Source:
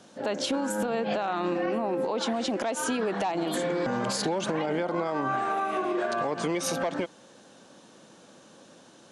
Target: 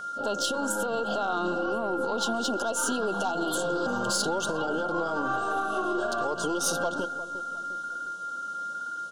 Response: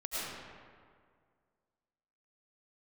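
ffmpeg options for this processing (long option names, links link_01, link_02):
-filter_complex "[0:a]bass=frequency=250:gain=-2,treble=frequency=4000:gain=7,aeval=exprs='0.266*(cos(1*acos(clip(val(0)/0.266,-1,1)))-cos(1*PI/2))+0.0188*(cos(6*acos(clip(val(0)/0.266,-1,1)))-cos(6*PI/2))+0.0211*(cos(8*acos(clip(val(0)/0.266,-1,1)))-cos(8*PI/2))':channel_layout=same,asuperstop=centerf=2100:order=20:qfactor=1.9,asplit=2[link_01][link_02];[link_02]adelay=355,lowpass=frequency=1000:poles=1,volume=-12dB,asplit=2[link_03][link_04];[link_04]adelay=355,lowpass=frequency=1000:poles=1,volume=0.49,asplit=2[link_05][link_06];[link_06]adelay=355,lowpass=frequency=1000:poles=1,volume=0.49,asplit=2[link_07][link_08];[link_08]adelay=355,lowpass=frequency=1000:poles=1,volume=0.49,asplit=2[link_09][link_10];[link_10]adelay=355,lowpass=frequency=1000:poles=1,volume=0.49[link_11];[link_01][link_03][link_05][link_07][link_09][link_11]amix=inputs=6:normalize=0,asplit=2[link_12][link_13];[link_13]asoftclip=type=tanh:threshold=-20.5dB,volume=-8dB[link_14];[link_12][link_14]amix=inputs=2:normalize=0,aeval=exprs='val(0)+0.0398*sin(2*PI*1400*n/s)':channel_layout=same,flanger=delay=1.8:depth=4:regen=-57:speed=1.1:shape=sinusoidal"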